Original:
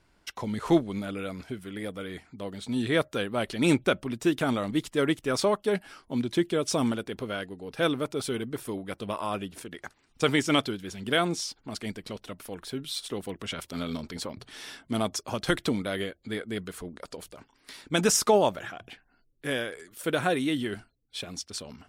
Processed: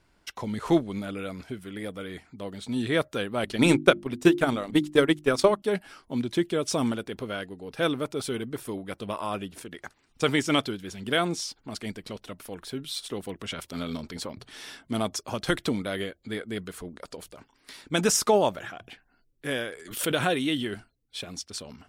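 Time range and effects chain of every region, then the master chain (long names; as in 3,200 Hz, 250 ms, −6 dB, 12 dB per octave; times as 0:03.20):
0:03.43–0:05.62: transient designer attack +9 dB, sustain −8 dB + mains-hum notches 50/100/150/200/250/300/350 Hz
0:19.85–0:20.65: parametric band 3,100 Hz +6.5 dB 0.52 octaves + background raised ahead of every attack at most 95 dB per second
whole clip: no processing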